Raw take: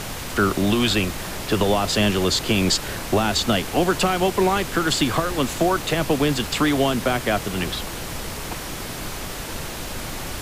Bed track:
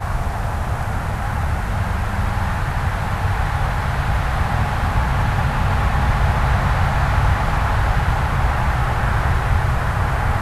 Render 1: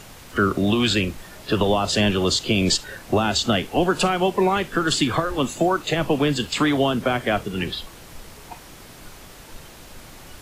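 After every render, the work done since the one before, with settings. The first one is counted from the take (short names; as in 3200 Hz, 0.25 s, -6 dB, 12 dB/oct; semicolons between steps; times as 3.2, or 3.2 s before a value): noise print and reduce 12 dB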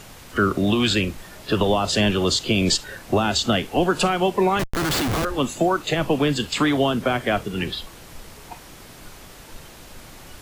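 4.59–5.25 Schmitt trigger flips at -24.5 dBFS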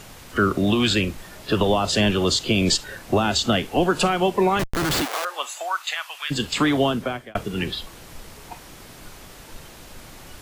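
5.04–6.3 HPF 500 Hz -> 1400 Hz 24 dB/oct; 6.87–7.35 fade out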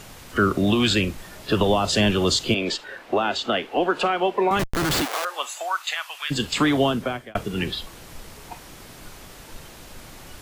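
2.54–4.51 three-band isolator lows -18 dB, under 280 Hz, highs -15 dB, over 3800 Hz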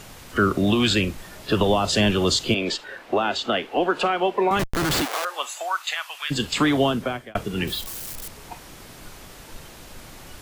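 7.67–8.28 switching spikes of -27.5 dBFS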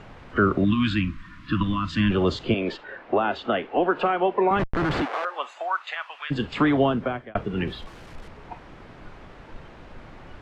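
0.65–2.11 spectral gain 330–960 Hz -26 dB; LPF 2000 Hz 12 dB/oct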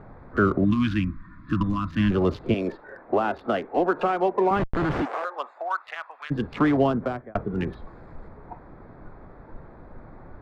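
Wiener smoothing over 15 samples; high shelf 3800 Hz -9 dB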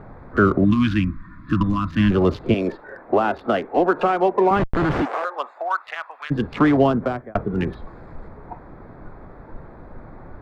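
gain +4.5 dB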